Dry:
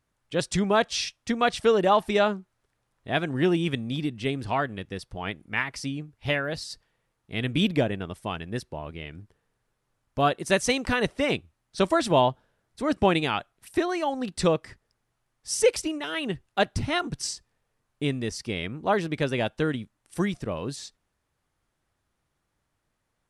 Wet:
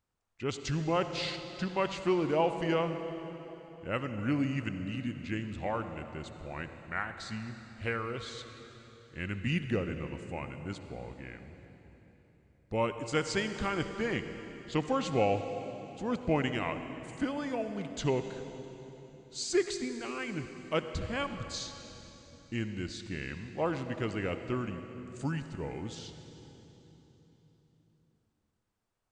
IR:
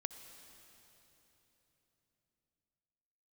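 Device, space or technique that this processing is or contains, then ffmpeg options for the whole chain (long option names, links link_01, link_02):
slowed and reverbed: -filter_complex "[0:a]asetrate=35280,aresample=44100[link_01];[1:a]atrim=start_sample=2205[link_02];[link_01][link_02]afir=irnorm=-1:irlink=0,volume=-5.5dB"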